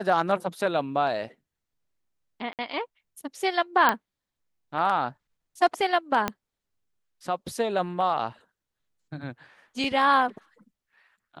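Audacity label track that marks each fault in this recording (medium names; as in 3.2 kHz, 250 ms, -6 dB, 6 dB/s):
2.530000	2.590000	dropout 58 ms
3.890000	3.890000	pop -7 dBFS
6.280000	6.280000	pop -10 dBFS
9.840000	9.840000	dropout 2.5 ms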